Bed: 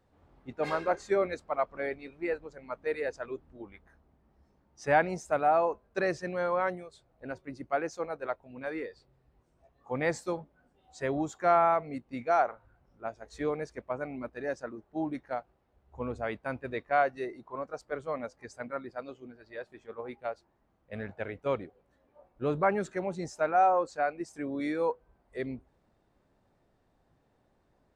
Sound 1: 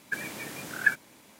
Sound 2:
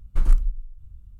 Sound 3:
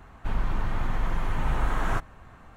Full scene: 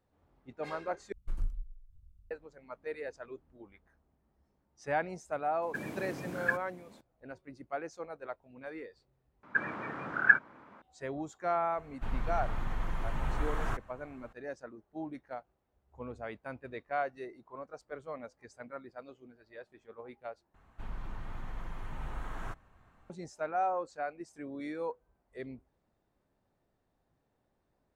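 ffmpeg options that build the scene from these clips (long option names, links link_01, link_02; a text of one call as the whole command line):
ffmpeg -i bed.wav -i cue0.wav -i cue1.wav -i cue2.wav -filter_complex "[1:a]asplit=2[link_01][link_02];[3:a]asplit=2[link_03][link_04];[0:a]volume=-7.5dB[link_05];[2:a]asoftclip=type=hard:threshold=-10.5dB[link_06];[link_01]tiltshelf=frequency=1300:gain=9[link_07];[link_02]lowpass=frequency=1300:width_type=q:width=3[link_08];[link_05]asplit=4[link_09][link_10][link_11][link_12];[link_09]atrim=end=1.124[link_13];[link_06]atrim=end=1.19,asetpts=PTS-STARTPTS,volume=-15dB[link_14];[link_10]atrim=start=2.306:end=9.434[link_15];[link_08]atrim=end=1.39,asetpts=PTS-STARTPTS,volume=-0.5dB[link_16];[link_11]atrim=start=10.816:end=20.544[link_17];[link_04]atrim=end=2.56,asetpts=PTS-STARTPTS,volume=-14dB[link_18];[link_12]atrim=start=23.096[link_19];[link_07]atrim=end=1.39,asetpts=PTS-STARTPTS,volume=-5.5dB,afade=type=in:duration=0.004:curve=hsin,afade=type=out:start_time=1.386:duration=0.004:curve=hsin,adelay=5620[link_20];[link_03]atrim=end=2.56,asetpts=PTS-STARTPTS,volume=-7.5dB,afade=type=in:duration=0.004:curve=hsin,afade=type=out:start_time=2.556:duration=0.004:curve=hsin,adelay=11770[link_21];[link_13][link_14]acrossfade=duration=0.004:curve1=hsin:curve2=hsin[link_22];[link_22][link_15]acrossfade=duration=0.004:curve1=hsin:curve2=hsin[link_23];[link_23][link_16]acrossfade=duration=0.004:curve1=hsin:curve2=hsin[link_24];[link_24][link_17]acrossfade=duration=0.004:curve1=hsin:curve2=hsin[link_25];[link_25][link_18]acrossfade=duration=0.004:curve1=hsin:curve2=hsin[link_26];[link_26][link_19]acrossfade=duration=0.004:curve1=hsin:curve2=hsin[link_27];[link_27][link_20][link_21]amix=inputs=3:normalize=0" out.wav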